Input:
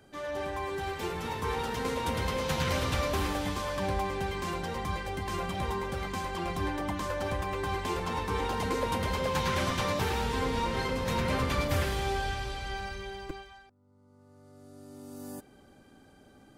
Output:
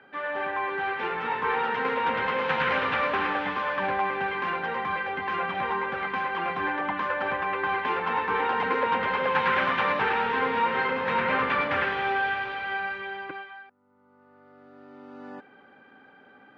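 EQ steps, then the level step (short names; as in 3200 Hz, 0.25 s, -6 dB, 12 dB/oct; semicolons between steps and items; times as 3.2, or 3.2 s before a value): speaker cabinet 240–2200 Hz, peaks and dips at 340 Hz -7 dB, 640 Hz -8 dB, 1100 Hz -4 dB, 2100 Hz -4 dB; tilt shelf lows -7 dB, about 650 Hz; +8.5 dB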